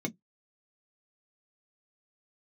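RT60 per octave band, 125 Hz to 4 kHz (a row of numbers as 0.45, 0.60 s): 0.20, 0.15, 0.10, 0.10, 0.10, 0.10 s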